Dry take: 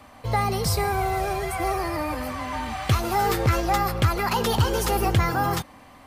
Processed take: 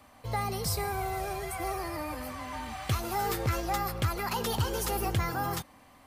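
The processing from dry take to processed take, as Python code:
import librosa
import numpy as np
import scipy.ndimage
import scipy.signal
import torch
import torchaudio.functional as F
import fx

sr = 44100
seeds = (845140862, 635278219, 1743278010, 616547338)

y = fx.high_shelf(x, sr, hz=6600.0, db=6.5)
y = F.gain(torch.from_numpy(y), -8.5).numpy()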